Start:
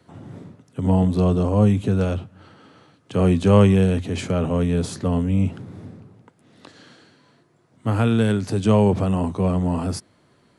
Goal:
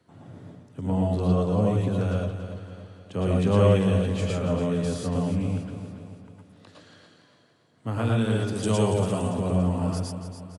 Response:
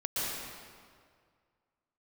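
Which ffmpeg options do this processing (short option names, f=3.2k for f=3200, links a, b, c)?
-filter_complex "[0:a]asettb=1/sr,asplit=3[a][b][c];[a]atrim=end=8.554[d];[b]atrim=start=8.55:end=9.19,asetpts=PTS-STARTPTS,afade=t=in:d=0.004:c=qsin,afade=t=out:st=0.636:d=0.004:c=qsin,aemphasis=mode=production:type=75fm[e];[c]atrim=start=9.186[f];[d][e]acrossfade=d=0.004:c1=hsin:c2=qsin[g];[g][f]acrossfade=d=0.004:c1=qsin:c2=hsin,aecho=1:1:284|568|852|1136|1420:0.316|0.155|0.0759|0.0372|0.0182[h];[1:a]atrim=start_sample=2205,atrim=end_sample=6174,asetrate=48510,aresample=44100[i];[h][i]afir=irnorm=-1:irlink=0,volume=-5.5dB"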